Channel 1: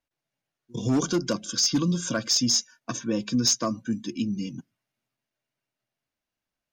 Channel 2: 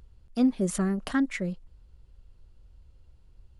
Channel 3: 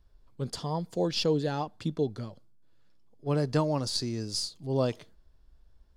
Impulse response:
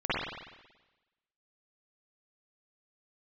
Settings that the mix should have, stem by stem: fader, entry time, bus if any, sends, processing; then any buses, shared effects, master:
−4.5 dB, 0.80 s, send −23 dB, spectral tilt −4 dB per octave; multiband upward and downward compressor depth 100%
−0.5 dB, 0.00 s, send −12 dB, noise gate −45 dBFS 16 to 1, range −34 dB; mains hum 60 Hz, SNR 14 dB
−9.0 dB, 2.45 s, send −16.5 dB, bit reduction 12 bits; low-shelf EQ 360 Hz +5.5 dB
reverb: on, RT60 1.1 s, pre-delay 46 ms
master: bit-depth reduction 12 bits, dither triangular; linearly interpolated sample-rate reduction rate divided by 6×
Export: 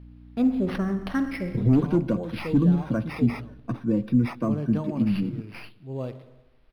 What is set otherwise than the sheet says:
stem 1: missing multiband upward and downward compressor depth 100%
stem 3: entry 2.45 s → 1.20 s
reverb return −6.0 dB

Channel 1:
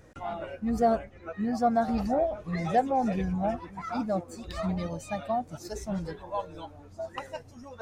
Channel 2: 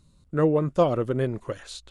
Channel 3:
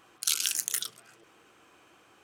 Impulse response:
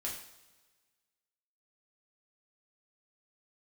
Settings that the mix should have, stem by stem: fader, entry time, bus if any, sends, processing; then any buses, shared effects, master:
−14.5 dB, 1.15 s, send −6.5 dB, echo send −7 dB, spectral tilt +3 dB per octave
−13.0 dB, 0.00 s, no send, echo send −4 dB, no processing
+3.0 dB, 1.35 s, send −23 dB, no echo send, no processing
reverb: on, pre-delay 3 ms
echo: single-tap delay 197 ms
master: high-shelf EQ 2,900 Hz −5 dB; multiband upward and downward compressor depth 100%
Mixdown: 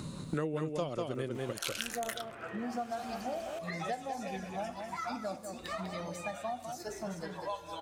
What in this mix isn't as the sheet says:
stem 2 −13.0 dB → −4.0 dB
master: missing high-shelf EQ 2,900 Hz −5 dB

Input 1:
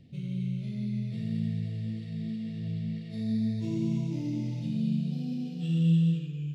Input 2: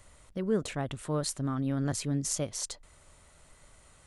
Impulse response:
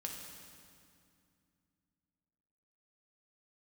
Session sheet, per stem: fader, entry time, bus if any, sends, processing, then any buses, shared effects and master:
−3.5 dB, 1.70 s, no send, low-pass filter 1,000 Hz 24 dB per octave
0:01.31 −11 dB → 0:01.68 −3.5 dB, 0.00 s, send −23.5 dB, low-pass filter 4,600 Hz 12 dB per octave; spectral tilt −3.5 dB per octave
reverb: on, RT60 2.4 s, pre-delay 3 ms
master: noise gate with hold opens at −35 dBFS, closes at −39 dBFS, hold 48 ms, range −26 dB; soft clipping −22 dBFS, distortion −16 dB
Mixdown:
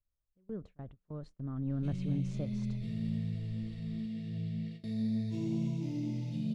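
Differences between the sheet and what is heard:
stem 1: missing low-pass filter 1,000 Hz 24 dB per octave
stem 2 −11.0 dB → −19.0 dB

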